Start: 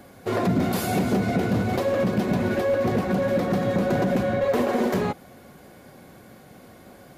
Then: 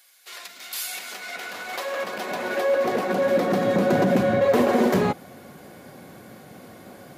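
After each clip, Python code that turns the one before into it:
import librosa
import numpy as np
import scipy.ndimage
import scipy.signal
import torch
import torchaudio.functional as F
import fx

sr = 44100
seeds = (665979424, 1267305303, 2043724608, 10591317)

y = fx.filter_sweep_highpass(x, sr, from_hz=3100.0, to_hz=100.0, start_s=0.59, end_s=4.54, q=0.71)
y = F.gain(torch.from_numpy(y), 3.5).numpy()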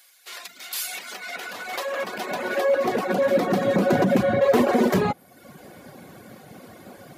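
y = fx.dereverb_blind(x, sr, rt60_s=0.79)
y = F.gain(torch.from_numpy(y), 2.0).numpy()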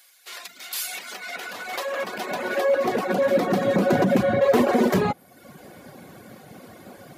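y = x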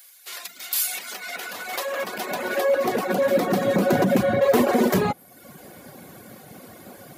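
y = fx.high_shelf(x, sr, hz=9200.0, db=11.5)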